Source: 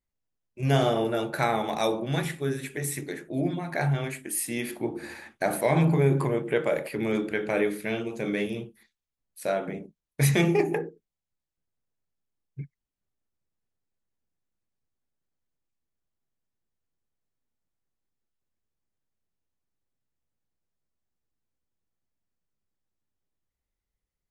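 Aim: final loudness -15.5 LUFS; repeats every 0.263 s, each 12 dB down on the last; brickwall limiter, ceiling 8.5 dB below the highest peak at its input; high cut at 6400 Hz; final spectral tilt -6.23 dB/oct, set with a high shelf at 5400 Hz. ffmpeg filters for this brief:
-af "lowpass=6.4k,highshelf=f=5.4k:g=-5.5,alimiter=limit=-19dB:level=0:latency=1,aecho=1:1:263|526|789:0.251|0.0628|0.0157,volume=15dB"

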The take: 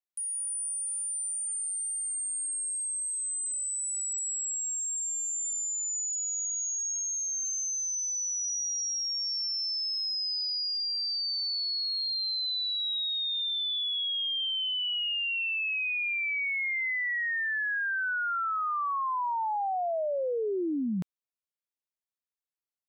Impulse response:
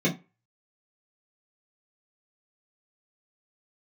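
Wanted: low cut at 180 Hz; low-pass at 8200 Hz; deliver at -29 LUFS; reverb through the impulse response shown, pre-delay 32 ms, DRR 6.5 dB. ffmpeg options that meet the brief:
-filter_complex "[0:a]highpass=180,lowpass=8.2k,asplit=2[a][b];[1:a]atrim=start_sample=2205,adelay=32[c];[b][c]afir=irnorm=-1:irlink=0,volume=-18.5dB[d];[a][d]amix=inputs=2:normalize=0"

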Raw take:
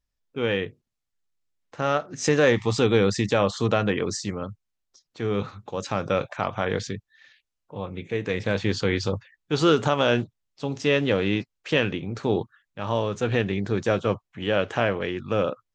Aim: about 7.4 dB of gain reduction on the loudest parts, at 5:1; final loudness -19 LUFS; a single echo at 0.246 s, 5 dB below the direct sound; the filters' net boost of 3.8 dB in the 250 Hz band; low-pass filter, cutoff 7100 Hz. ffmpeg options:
-af "lowpass=7.1k,equalizer=f=250:t=o:g=5,acompressor=threshold=-21dB:ratio=5,aecho=1:1:246:0.562,volume=8dB"

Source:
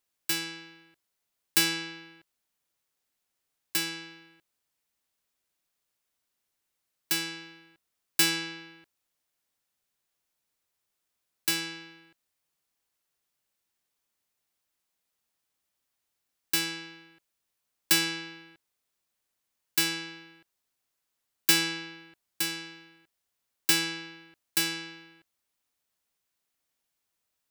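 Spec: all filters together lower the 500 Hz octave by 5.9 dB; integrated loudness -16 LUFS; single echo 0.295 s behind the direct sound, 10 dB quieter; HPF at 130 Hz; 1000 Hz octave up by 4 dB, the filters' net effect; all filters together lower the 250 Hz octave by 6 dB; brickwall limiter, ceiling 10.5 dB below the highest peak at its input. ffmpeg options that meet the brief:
-af "highpass=130,equalizer=f=250:t=o:g=-7,equalizer=f=500:t=o:g=-5.5,equalizer=f=1k:t=o:g=7,alimiter=limit=-18dB:level=0:latency=1,aecho=1:1:295:0.316,volume=16dB"

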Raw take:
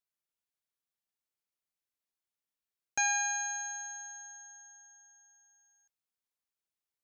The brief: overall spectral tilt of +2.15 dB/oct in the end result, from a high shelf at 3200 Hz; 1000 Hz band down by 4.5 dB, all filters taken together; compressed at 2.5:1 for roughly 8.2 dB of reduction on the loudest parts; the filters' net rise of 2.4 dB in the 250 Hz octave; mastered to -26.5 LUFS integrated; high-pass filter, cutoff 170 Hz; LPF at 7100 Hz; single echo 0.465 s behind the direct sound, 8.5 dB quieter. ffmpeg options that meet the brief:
-af "highpass=170,lowpass=7.1k,equalizer=f=250:t=o:g=4.5,equalizer=f=1k:t=o:g=-6,highshelf=f=3.2k:g=-6,acompressor=threshold=-43dB:ratio=2.5,aecho=1:1:465:0.376,volume=18dB"

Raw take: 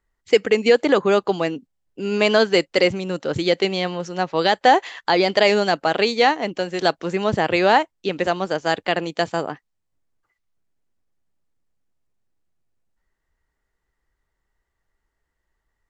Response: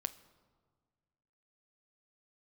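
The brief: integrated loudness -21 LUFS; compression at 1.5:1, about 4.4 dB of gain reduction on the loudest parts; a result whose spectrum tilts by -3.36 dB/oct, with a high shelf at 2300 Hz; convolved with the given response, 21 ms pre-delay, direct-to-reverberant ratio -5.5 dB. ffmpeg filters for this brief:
-filter_complex "[0:a]highshelf=f=2.3k:g=-5,acompressor=threshold=-22dB:ratio=1.5,asplit=2[a][b];[1:a]atrim=start_sample=2205,adelay=21[c];[b][c]afir=irnorm=-1:irlink=0,volume=6dB[d];[a][d]amix=inputs=2:normalize=0,volume=-4dB"

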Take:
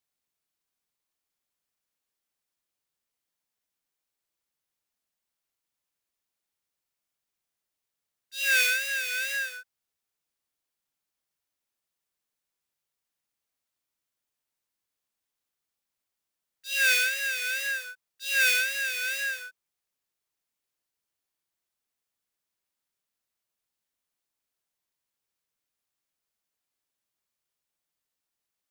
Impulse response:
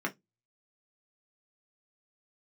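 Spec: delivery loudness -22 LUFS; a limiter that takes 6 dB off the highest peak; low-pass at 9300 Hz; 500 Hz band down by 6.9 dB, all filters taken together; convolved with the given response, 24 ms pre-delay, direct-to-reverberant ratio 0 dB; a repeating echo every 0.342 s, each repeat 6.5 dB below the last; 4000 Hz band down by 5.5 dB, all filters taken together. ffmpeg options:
-filter_complex "[0:a]lowpass=9.3k,equalizer=f=500:t=o:g=-7,equalizer=f=4k:t=o:g=-6.5,alimiter=limit=-22dB:level=0:latency=1,aecho=1:1:342|684|1026|1368|1710|2052:0.473|0.222|0.105|0.0491|0.0231|0.0109,asplit=2[a][b];[1:a]atrim=start_sample=2205,adelay=24[c];[b][c]afir=irnorm=-1:irlink=0,volume=-6dB[d];[a][d]amix=inputs=2:normalize=0,volume=5.5dB"

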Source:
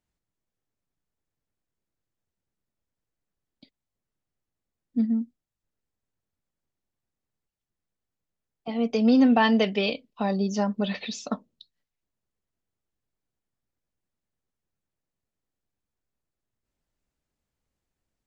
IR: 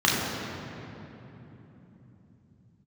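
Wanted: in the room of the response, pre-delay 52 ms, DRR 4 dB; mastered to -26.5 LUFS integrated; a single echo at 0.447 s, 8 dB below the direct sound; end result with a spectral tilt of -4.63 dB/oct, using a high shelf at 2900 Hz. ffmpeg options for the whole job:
-filter_complex "[0:a]highshelf=f=2.9k:g=4,aecho=1:1:447:0.398,asplit=2[a][b];[1:a]atrim=start_sample=2205,adelay=52[c];[b][c]afir=irnorm=-1:irlink=0,volume=-22dB[d];[a][d]amix=inputs=2:normalize=0,volume=-5dB"

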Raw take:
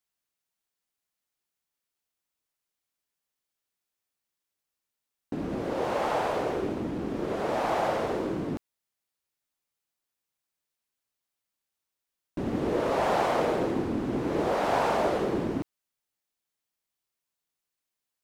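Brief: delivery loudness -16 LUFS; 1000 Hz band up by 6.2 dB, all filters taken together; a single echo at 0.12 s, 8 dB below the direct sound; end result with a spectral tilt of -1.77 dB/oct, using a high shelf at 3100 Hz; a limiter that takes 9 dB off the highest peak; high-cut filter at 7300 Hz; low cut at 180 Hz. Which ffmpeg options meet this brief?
-af "highpass=180,lowpass=7.3k,equalizer=f=1k:t=o:g=8.5,highshelf=f=3.1k:g=-4.5,alimiter=limit=-19dB:level=0:latency=1,aecho=1:1:120:0.398,volume=12.5dB"

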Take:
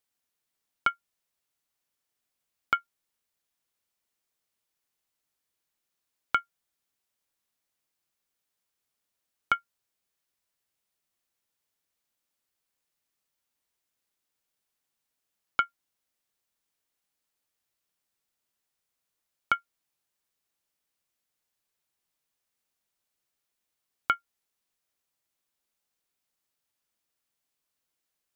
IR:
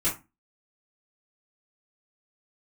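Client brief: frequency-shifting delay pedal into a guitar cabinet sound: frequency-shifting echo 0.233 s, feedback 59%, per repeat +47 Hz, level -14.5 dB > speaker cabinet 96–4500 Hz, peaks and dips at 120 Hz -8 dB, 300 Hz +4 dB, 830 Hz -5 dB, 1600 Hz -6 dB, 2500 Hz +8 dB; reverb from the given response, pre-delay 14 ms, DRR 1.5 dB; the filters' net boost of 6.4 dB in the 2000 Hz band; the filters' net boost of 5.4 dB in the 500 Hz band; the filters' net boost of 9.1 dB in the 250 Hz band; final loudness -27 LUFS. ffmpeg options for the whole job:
-filter_complex "[0:a]equalizer=f=250:t=o:g=8,equalizer=f=500:t=o:g=4.5,equalizer=f=2k:t=o:g=6.5,asplit=2[a][b];[1:a]atrim=start_sample=2205,adelay=14[c];[b][c]afir=irnorm=-1:irlink=0,volume=-11dB[d];[a][d]amix=inputs=2:normalize=0,asplit=7[e][f][g][h][i][j][k];[f]adelay=233,afreqshift=47,volume=-14.5dB[l];[g]adelay=466,afreqshift=94,volume=-19.1dB[m];[h]adelay=699,afreqshift=141,volume=-23.7dB[n];[i]adelay=932,afreqshift=188,volume=-28.2dB[o];[j]adelay=1165,afreqshift=235,volume=-32.8dB[p];[k]adelay=1398,afreqshift=282,volume=-37.4dB[q];[e][l][m][n][o][p][q]amix=inputs=7:normalize=0,highpass=96,equalizer=f=120:t=q:w=4:g=-8,equalizer=f=300:t=q:w=4:g=4,equalizer=f=830:t=q:w=4:g=-5,equalizer=f=1.6k:t=q:w=4:g=-6,equalizer=f=2.5k:t=q:w=4:g=8,lowpass=f=4.5k:w=0.5412,lowpass=f=4.5k:w=1.3066,volume=-0.5dB"

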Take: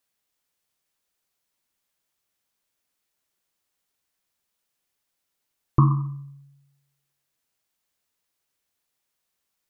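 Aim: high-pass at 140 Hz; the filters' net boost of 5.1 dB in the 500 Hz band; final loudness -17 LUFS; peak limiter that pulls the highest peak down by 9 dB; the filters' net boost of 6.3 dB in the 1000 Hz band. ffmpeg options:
-af "highpass=140,equalizer=f=500:t=o:g=8,equalizer=f=1k:t=o:g=5.5,volume=10.5dB,alimiter=limit=-1.5dB:level=0:latency=1"

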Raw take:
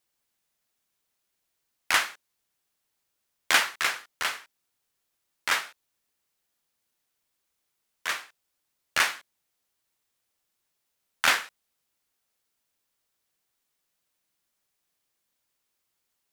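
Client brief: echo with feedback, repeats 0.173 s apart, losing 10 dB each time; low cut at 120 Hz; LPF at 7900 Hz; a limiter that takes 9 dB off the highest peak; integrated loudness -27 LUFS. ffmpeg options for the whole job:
-af "highpass=120,lowpass=7.9k,alimiter=limit=-15dB:level=0:latency=1,aecho=1:1:173|346|519|692:0.316|0.101|0.0324|0.0104,volume=4dB"

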